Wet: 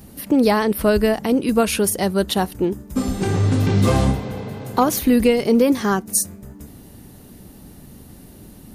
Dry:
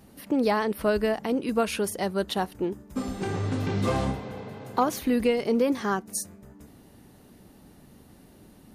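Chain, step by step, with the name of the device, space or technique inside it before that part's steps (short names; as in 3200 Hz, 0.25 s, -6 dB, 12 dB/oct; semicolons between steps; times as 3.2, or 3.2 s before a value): smiley-face EQ (low shelf 140 Hz +5.5 dB; bell 1100 Hz -3 dB 2.9 oct; high shelf 9100 Hz +8.5 dB); gain +8.5 dB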